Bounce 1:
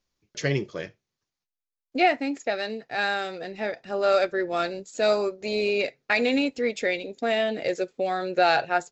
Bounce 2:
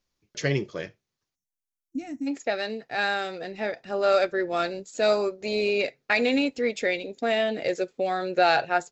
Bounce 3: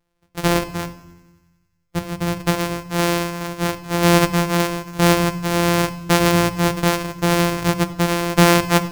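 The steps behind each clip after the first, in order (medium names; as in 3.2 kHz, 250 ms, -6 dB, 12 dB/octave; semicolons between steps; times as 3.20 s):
time-frequency box 1.35–2.27 s, 340–5400 Hz -25 dB
sorted samples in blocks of 256 samples; thinning echo 91 ms, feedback 70%, high-pass 530 Hz, level -22 dB; on a send at -7.5 dB: reverberation RT60 0.90 s, pre-delay 6 ms; on the sum: trim +5.5 dB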